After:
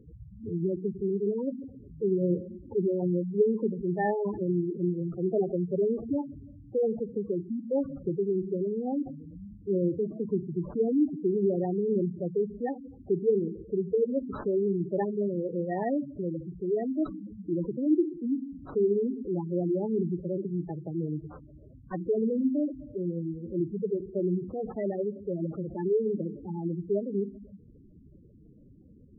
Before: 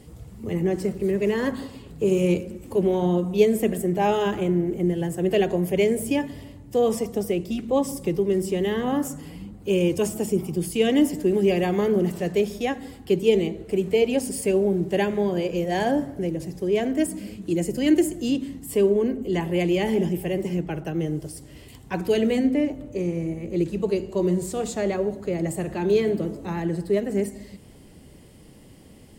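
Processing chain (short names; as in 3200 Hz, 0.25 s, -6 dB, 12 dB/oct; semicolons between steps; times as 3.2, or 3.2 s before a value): sample-and-hold 17×; spectral gate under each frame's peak -10 dB strong; gain -5 dB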